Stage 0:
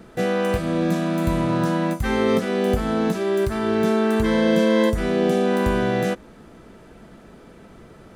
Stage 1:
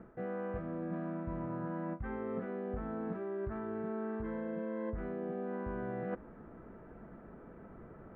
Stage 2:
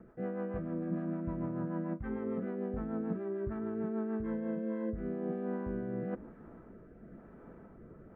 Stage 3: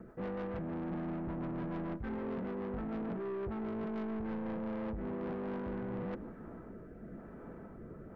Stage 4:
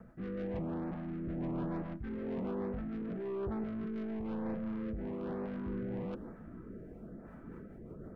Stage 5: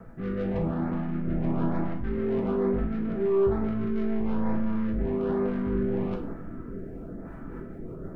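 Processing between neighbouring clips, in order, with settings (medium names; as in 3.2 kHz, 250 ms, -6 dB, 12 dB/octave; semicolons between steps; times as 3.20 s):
low-pass 1.7 kHz 24 dB/octave; reverse; compression 10:1, threshold -29 dBFS, peak gain reduction 15.5 dB; reverse; trim -6.5 dB
dynamic bell 230 Hz, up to +6 dB, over -52 dBFS, Q 0.78; rotary cabinet horn 6.7 Hz, later 1 Hz, at 4.12 s
saturation -40 dBFS, distortion -8 dB; on a send at -21.5 dB: reverberation RT60 1.1 s, pre-delay 45 ms; on the sum: trim +4.5 dB
rotary cabinet horn 1.1 Hz, later 6.3 Hz, at 6.82 s; LFO notch saw up 1.1 Hz 310–3500 Hz; trim +2.5 dB
simulated room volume 51 m³, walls mixed, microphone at 0.63 m; trim +6 dB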